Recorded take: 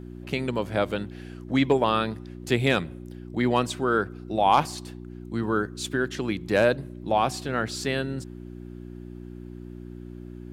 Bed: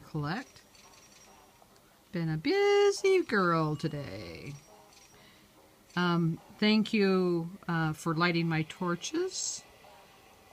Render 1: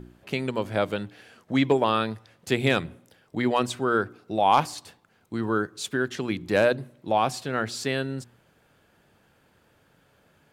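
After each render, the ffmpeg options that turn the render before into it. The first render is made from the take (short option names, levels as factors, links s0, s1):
-af "bandreject=f=60:t=h:w=4,bandreject=f=120:t=h:w=4,bandreject=f=180:t=h:w=4,bandreject=f=240:t=h:w=4,bandreject=f=300:t=h:w=4,bandreject=f=360:t=h:w=4"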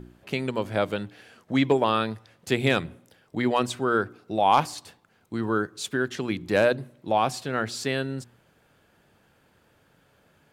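-af anull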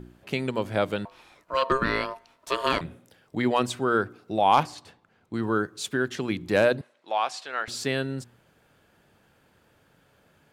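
-filter_complex "[0:a]asettb=1/sr,asplit=3[s0][s1][s2];[s0]atrim=end=1.054[s3];[s1]atrim=start=1.05:end=2.81,asetpts=PTS-STARTPTS,afade=t=in:d=0.004:c=qsin,afade=t=out:st=1.756:d=0.004:c=qsin,aeval=exprs='val(0)*sin(2*PI*800*n/s)':c=same[s4];[s2]atrim=start=2.806[s5];[s3][s4]acrossfade=d=0.004:c1=hsin:c2=qsin[s6];[s6][s5]acrossfade=d=0.004:c1=qsin:c2=hsin,asettb=1/sr,asplit=3[s7][s8][s9];[s7]atrim=end=4.634[s10];[s8]atrim=start=4.63:end=5.34,asetpts=PTS-STARTPTS,afade=t=in:d=0.004:c=qsin,afade=t=out:st=0.706:d=0.004:c=qsin,aemphasis=mode=reproduction:type=50kf[s11];[s9]atrim=start=5.336[s12];[s10][s11]acrossfade=d=0.004:c1=hsin:c2=qsin[s13];[s13][s12]acrossfade=d=0.004:c1=qsin:c2=hsin,asettb=1/sr,asplit=3[s14][s15][s16];[s14]atrim=end=6.814[s17];[s15]atrim=start=6.81:end=7.68,asetpts=PTS-STARTPTS,afade=t=in:d=0.004:c=qsin,afade=t=out:st=0.866:d=0.004:c=qsin,highpass=780,lowpass=6500[s18];[s16]atrim=start=7.676[s19];[s17][s18]acrossfade=d=0.004:c1=hsin:c2=qsin[s20];[s20][s19]acrossfade=d=0.004:c1=qsin:c2=hsin"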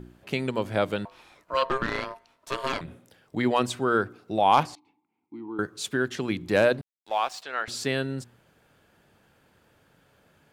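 -filter_complex "[0:a]asettb=1/sr,asplit=3[s0][s1][s2];[s0]atrim=end=1.654[s3];[s1]atrim=start=1.65:end=2.88,asetpts=PTS-STARTPTS,afade=t=in:d=0.004:c=qsin,afade=t=out:st=1.226:d=0.004:c=qsin,aeval=exprs='(tanh(7.94*val(0)+0.65)-tanh(0.65))/7.94':c=same[s4];[s2]atrim=start=2.876[s5];[s3][s4]acrossfade=d=0.004:c1=hsin:c2=qsin[s6];[s6][s5]acrossfade=d=0.004:c1=qsin:c2=hsin,asettb=1/sr,asplit=3[s7][s8][s9];[s7]atrim=end=4.754[s10];[s8]atrim=start=4.75:end=5.59,asetpts=PTS-STARTPTS,afade=t=in:d=0.004:c=qsin,afade=t=out:st=0.836:d=0.004:c=qsin,asplit=3[s11][s12][s13];[s11]bandpass=f=300:t=q:w=8,volume=1[s14];[s12]bandpass=f=870:t=q:w=8,volume=0.501[s15];[s13]bandpass=f=2240:t=q:w=8,volume=0.355[s16];[s14][s15][s16]amix=inputs=3:normalize=0[s17];[s9]atrim=start=5.586[s18];[s10][s17]acrossfade=d=0.004:c1=hsin:c2=qsin[s19];[s19][s18]acrossfade=d=0.004:c1=qsin:c2=hsin,asettb=1/sr,asplit=3[s20][s21][s22];[s20]atrim=end=6.744[s23];[s21]atrim=start=6.74:end=7.43,asetpts=PTS-STARTPTS,afade=t=in:d=0.004:c=qsin,afade=t=out:st=0.686:d=0.004:c=qsin,aeval=exprs='sgn(val(0))*max(abs(val(0))-0.00376,0)':c=same[s24];[s22]atrim=start=7.426[s25];[s23][s24]acrossfade=d=0.004:c1=hsin:c2=qsin[s26];[s26][s25]acrossfade=d=0.004:c1=qsin:c2=hsin"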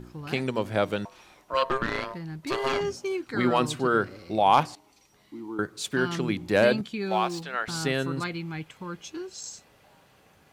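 -filter_complex "[1:a]volume=0.562[s0];[0:a][s0]amix=inputs=2:normalize=0"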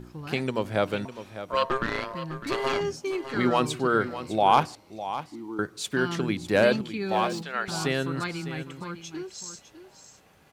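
-af "aecho=1:1:604:0.237"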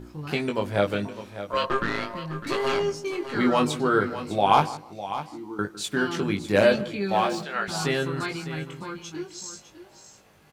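-filter_complex "[0:a]asplit=2[s0][s1];[s1]adelay=20,volume=0.631[s2];[s0][s2]amix=inputs=2:normalize=0,asplit=2[s3][s4];[s4]adelay=157,lowpass=f=1400:p=1,volume=0.158,asplit=2[s5][s6];[s6]adelay=157,lowpass=f=1400:p=1,volume=0.25[s7];[s3][s5][s7]amix=inputs=3:normalize=0"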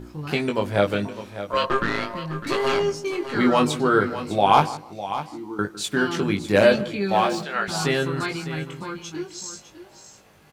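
-af "volume=1.41,alimiter=limit=0.708:level=0:latency=1"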